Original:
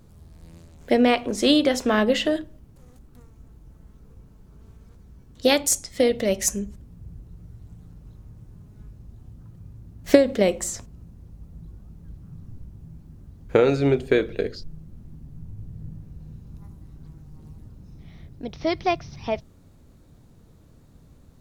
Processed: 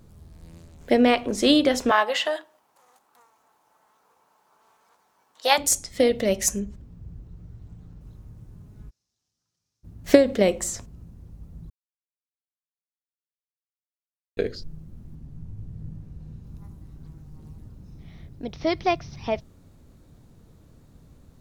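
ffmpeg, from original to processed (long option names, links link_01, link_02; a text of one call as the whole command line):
ffmpeg -i in.wav -filter_complex "[0:a]asettb=1/sr,asplit=3[link_01][link_02][link_03];[link_01]atrim=end=1.914[link_04];[link_02]atrim=start=1.91:end=5.58,asetpts=PTS-STARTPTS,afade=type=in:duration=0.004:curve=qsin,afade=type=out:start_time=3.666:duration=0.004:curve=qsin,highpass=frequency=880:width_type=q:width=2.7[link_05];[link_03]atrim=start=5.576[link_06];[link_04][link_05]acrossfade=duration=0.004:curve1=hsin:curve2=qsin[link_07];[link_07][link_06]acrossfade=duration=0.004:curve1=qsin:curve2=hsin,asettb=1/sr,asplit=3[link_08][link_09][link_10];[link_08]atrim=end=6.604[link_11];[link_09]atrim=start=6.6:end=8.01,asetpts=PTS-STARTPTS,afade=type=in:duration=0.004:curve=qsin,afade=type=out:start_time=1.406:duration=0.004:curve=qsin,equalizer=frequency=12000:width=0.85:gain=-12[link_12];[link_10]atrim=start=8.006[link_13];[link_11][link_12]acrossfade=duration=0.004:curve1=hsin:curve2=qsin[link_14];[link_14][link_13]acrossfade=duration=0.004:curve1=qsin:curve2=hsin,asplit=3[link_15][link_16][link_17];[link_15]afade=type=out:start_time=8.89:duration=0.02[link_18];[link_16]bandpass=frequency=5500:width_type=q:width=3.2,afade=type=in:start_time=8.89:duration=0.02,afade=type=out:start_time=9.83:duration=0.02[link_19];[link_17]afade=type=in:start_time=9.83:duration=0.02[link_20];[link_18][link_19][link_20]amix=inputs=3:normalize=0,asettb=1/sr,asplit=3[link_21][link_22][link_23];[link_21]atrim=end=15.154[link_24];[link_22]atrim=start=15.15:end=16.44,asetpts=PTS-STARTPTS,afade=type=in:duration=0.004:curve=qsin,afade=type=out:start_time=1.286:duration=0.004:curve=qsin,highshelf=frequency=12000:gain=-10[link_25];[link_23]atrim=start=16.436[link_26];[link_24][link_25]acrossfade=duration=0.004:curve1=hsin:curve2=qsin[link_27];[link_27][link_26]acrossfade=duration=0.004:curve1=qsin:curve2=hsin,asplit=3[link_28][link_29][link_30];[link_28]atrim=end=11.7,asetpts=PTS-STARTPTS,afade=type=out:start_time=11.696:duration=0.004:curve=hsin[link_31];[link_29]atrim=start=11.7:end=14.37,asetpts=PTS-STARTPTS,volume=0[link_32];[link_30]atrim=start=14.37,asetpts=PTS-STARTPTS,afade=type=in:duration=0.004:curve=hsin[link_33];[link_31][link_32][link_33]concat=n=3:v=0:a=1" out.wav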